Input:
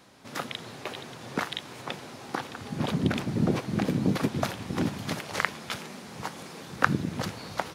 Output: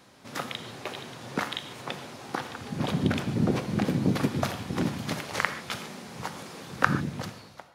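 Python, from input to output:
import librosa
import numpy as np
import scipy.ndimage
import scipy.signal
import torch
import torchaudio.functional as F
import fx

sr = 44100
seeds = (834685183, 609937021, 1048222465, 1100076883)

y = fx.fade_out_tail(x, sr, length_s=0.85)
y = fx.rev_gated(y, sr, seeds[0], gate_ms=170, shape='flat', drr_db=9.5)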